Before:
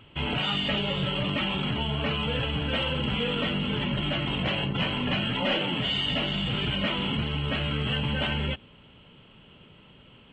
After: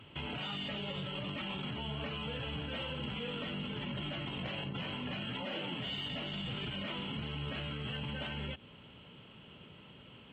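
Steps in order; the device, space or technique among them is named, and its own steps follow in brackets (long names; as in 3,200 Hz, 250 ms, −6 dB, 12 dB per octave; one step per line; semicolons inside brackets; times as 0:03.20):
podcast mastering chain (high-pass filter 67 Hz; de-essing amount 90%; downward compressor, threshold −32 dBFS, peak gain reduction 9 dB; brickwall limiter −29.5 dBFS, peak gain reduction 5.5 dB; level −1 dB; MP3 96 kbit/s 48,000 Hz)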